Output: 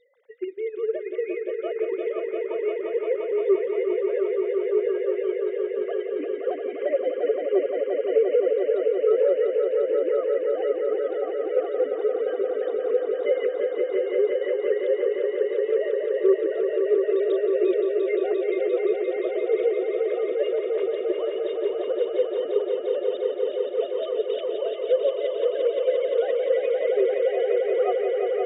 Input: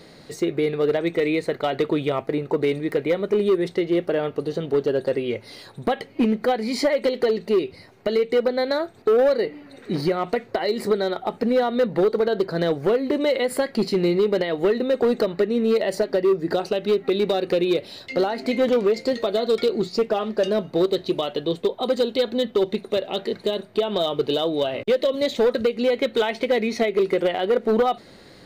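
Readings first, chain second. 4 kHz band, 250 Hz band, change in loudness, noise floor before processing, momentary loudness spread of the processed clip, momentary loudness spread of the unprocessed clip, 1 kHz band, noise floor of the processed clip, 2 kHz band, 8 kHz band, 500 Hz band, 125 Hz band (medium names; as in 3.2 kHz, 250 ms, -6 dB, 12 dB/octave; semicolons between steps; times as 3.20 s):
under -10 dB, -8.0 dB, -2.0 dB, -47 dBFS, 6 LU, 5 LU, -9.5 dB, -33 dBFS, -7.5 dB, no reading, -0.5 dB, under -35 dB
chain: formants replaced by sine waves; echo with a slow build-up 174 ms, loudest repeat 5, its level -6 dB; trim -6.5 dB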